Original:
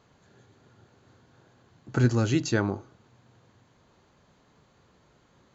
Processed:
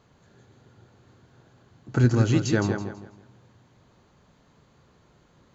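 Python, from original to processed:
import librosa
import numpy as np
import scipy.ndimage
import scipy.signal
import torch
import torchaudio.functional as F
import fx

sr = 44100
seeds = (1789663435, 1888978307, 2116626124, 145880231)

y = fx.low_shelf(x, sr, hz=250.0, db=4.0)
y = fx.echo_feedback(y, sr, ms=164, feedback_pct=31, wet_db=-7.0)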